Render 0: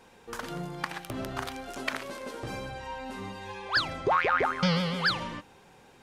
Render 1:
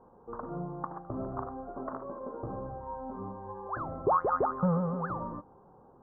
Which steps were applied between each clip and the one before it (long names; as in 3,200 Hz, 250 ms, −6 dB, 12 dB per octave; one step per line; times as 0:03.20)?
elliptic low-pass filter 1,200 Hz, stop band 50 dB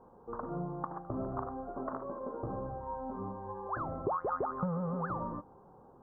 downward compressor 10 to 1, threshold −30 dBFS, peak gain reduction 9 dB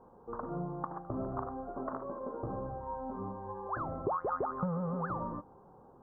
no processing that can be heard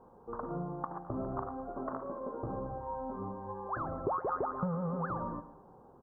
repeating echo 113 ms, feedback 44%, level −15 dB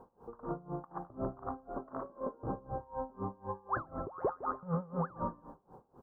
tremolo with a sine in dB 4 Hz, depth 24 dB
level +4.5 dB